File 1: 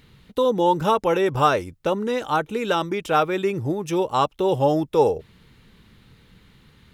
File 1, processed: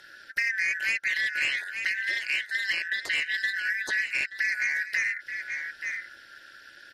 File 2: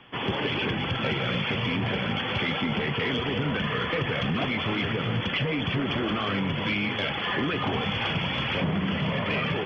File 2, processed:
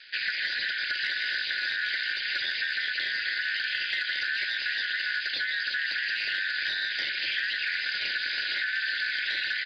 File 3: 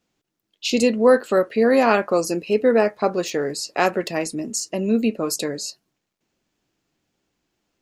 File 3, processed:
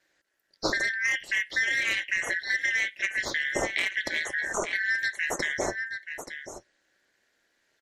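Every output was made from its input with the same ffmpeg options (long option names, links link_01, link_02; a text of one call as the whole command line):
ffmpeg -i in.wav -filter_complex "[0:a]afftfilt=real='real(if(lt(b,272),68*(eq(floor(b/68),0)*3+eq(floor(b/68),1)*0+eq(floor(b/68),2)*1+eq(floor(b/68),3)*2)+mod(b,68),b),0)':imag='imag(if(lt(b,272),68*(eq(floor(b/68),0)*3+eq(floor(b/68),1)*0+eq(floor(b/68),2)*1+eq(floor(b/68),3)*2)+mod(b,68),b),0)':win_size=2048:overlap=0.75,aeval=exprs='0.75*(cos(1*acos(clip(val(0)/0.75,-1,1)))-cos(1*PI/2))+0.133*(cos(5*acos(clip(val(0)/0.75,-1,1)))-cos(5*PI/2))+0.00531*(cos(6*acos(clip(val(0)/0.75,-1,1)))-cos(6*PI/2))':channel_layout=same,asplit=2[link_01][link_02];[link_02]aecho=0:1:878:0.158[link_03];[link_01][link_03]amix=inputs=2:normalize=0,acrossover=split=2700|5500[link_04][link_05][link_06];[link_04]acompressor=threshold=-27dB:ratio=4[link_07];[link_05]acompressor=threshold=-33dB:ratio=4[link_08];[link_06]acompressor=threshold=-45dB:ratio=4[link_09];[link_07][link_08][link_09]amix=inputs=3:normalize=0,equalizer=frequency=460:width_type=o:width=0.69:gain=14,aeval=exprs='val(0)*sin(2*PI*110*n/s)':channel_layout=same" -ar 48000 -c:a libmp3lame -b:a 56k out.mp3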